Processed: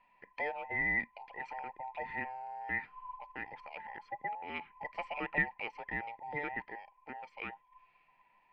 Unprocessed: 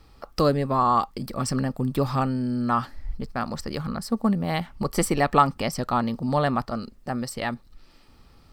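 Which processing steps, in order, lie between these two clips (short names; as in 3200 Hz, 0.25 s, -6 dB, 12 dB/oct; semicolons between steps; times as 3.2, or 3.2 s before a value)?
band inversion scrambler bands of 1000 Hz; ladder low-pass 2500 Hz, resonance 85%; gain -6 dB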